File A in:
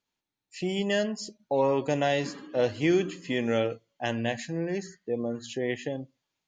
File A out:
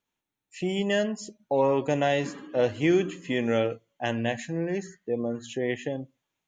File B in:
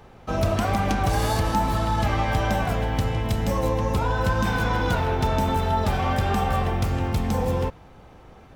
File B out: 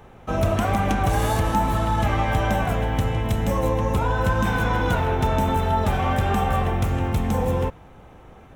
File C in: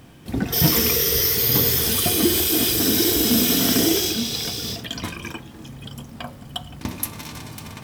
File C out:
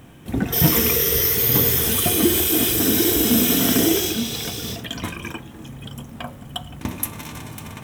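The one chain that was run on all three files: peaking EQ 4.7 kHz -10 dB 0.45 oct; trim +1.5 dB

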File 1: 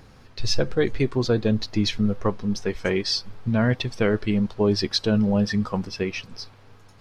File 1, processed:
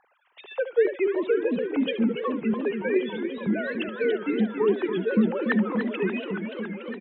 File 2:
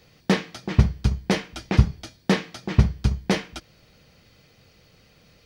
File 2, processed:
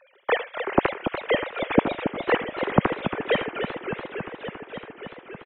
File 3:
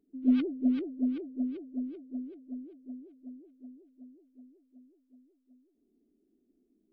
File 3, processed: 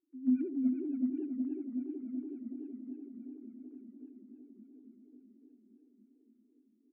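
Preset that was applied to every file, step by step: formants replaced by sine waves; delay 73 ms -13 dB; modulated delay 284 ms, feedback 80%, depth 195 cents, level -8.5 dB; trim -4 dB

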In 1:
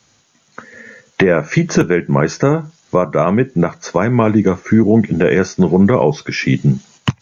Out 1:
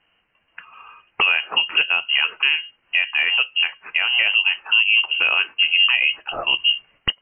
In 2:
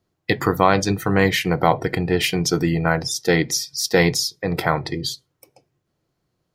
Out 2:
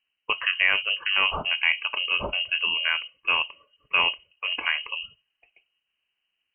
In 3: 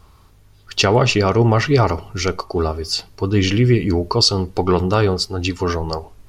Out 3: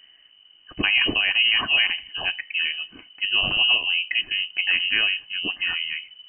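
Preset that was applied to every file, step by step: frequency inversion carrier 3 kHz; trim -6 dB

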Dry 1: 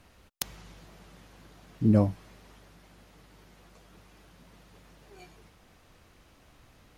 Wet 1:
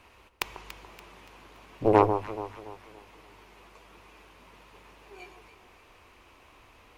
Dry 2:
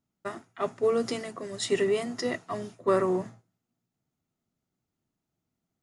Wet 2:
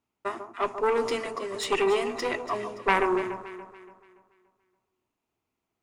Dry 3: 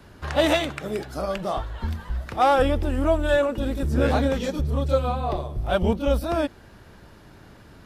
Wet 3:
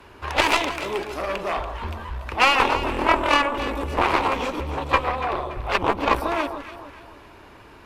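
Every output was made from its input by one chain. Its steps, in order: Chebyshev shaper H 3 -14 dB, 4 -17 dB, 7 -17 dB, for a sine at -5 dBFS; fifteen-band graphic EQ 160 Hz -9 dB, 400 Hz +6 dB, 1 kHz +10 dB, 2.5 kHz +10 dB; saturation -9 dBFS; on a send: echo whose repeats swap between lows and highs 143 ms, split 1.2 kHz, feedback 62%, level -8 dB; on the sum: trim +3 dB

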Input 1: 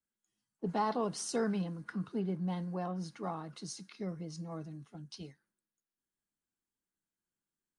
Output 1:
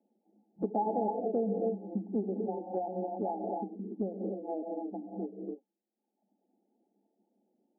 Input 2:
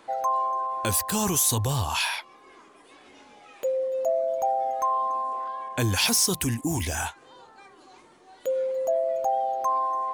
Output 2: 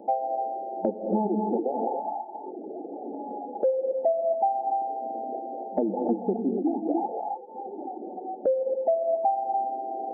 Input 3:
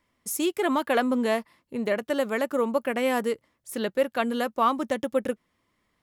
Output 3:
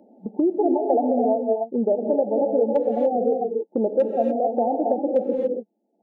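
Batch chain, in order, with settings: FFT band-pass 190–890 Hz; reverb removal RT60 1.1 s; dynamic bell 260 Hz, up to -3 dB, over -43 dBFS, Q 3.5; hard clipper -15.5 dBFS; gated-style reverb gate 310 ms rising, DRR 2 dB; three bands compressed up and down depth 70%; trim +5 dB

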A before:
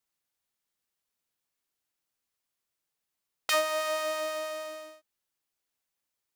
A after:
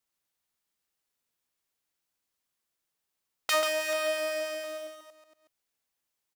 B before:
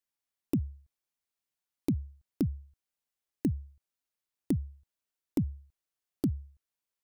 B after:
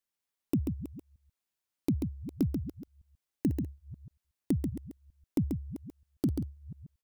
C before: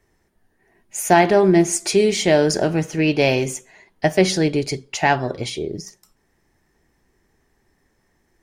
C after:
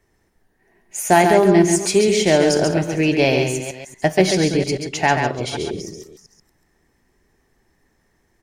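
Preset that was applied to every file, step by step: chunks repeated in reverse 232 ms, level -12.5 dB; delay 137 ms -5.5 dB

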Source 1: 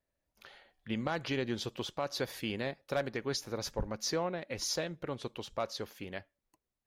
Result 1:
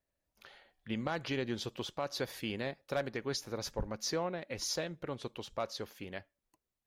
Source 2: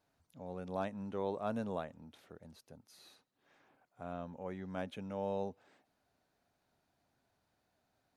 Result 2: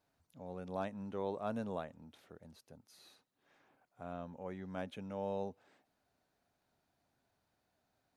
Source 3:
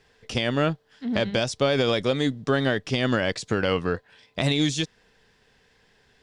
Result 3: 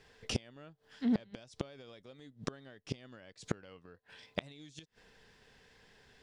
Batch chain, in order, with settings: inverted gate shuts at -18 dBFS, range -29 dB; trim -1.5 dB

